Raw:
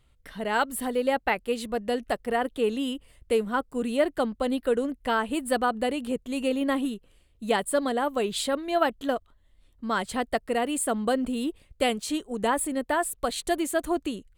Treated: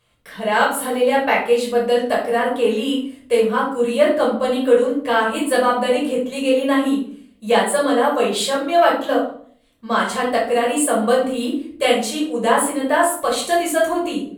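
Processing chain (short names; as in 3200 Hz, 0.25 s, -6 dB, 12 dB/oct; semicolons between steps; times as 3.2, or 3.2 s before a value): in parallel at -11 dB: one-sided clip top -20.5 dBFS; on the sum: HPF 380 Hz 6 dB/oct; shoebox room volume 600 m³, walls furnished, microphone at 5.5 m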